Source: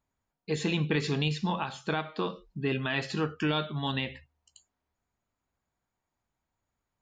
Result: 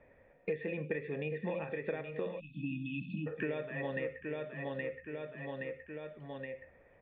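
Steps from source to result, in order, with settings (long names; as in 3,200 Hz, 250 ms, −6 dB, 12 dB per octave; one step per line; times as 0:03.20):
formant resonators in series e
on a send: repeating echo 821 ms, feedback 27%, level −8.5 dB
on the sum: time-frequency box erased 0:02.40–0:03.27, 310–2,500 Hz
multiband upward and downward compressor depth 100%
level +6.5 dB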